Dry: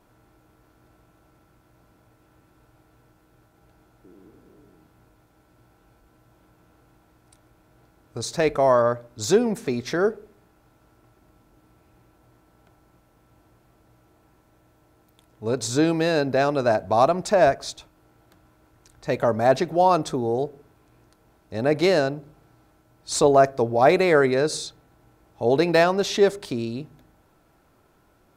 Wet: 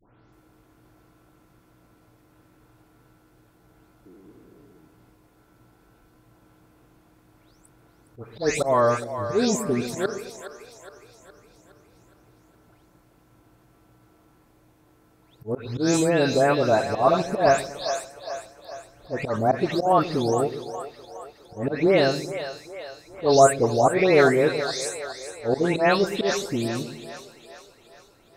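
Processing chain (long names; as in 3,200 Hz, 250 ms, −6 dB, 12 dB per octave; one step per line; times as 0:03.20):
every frequency bin delayed by itself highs late, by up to 327 ms
volume swells 126 ms
echo with a time of its own for lows and highs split 450 Hz, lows 118 ms, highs 415 ms, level −10.5 dB
level +1.5 dB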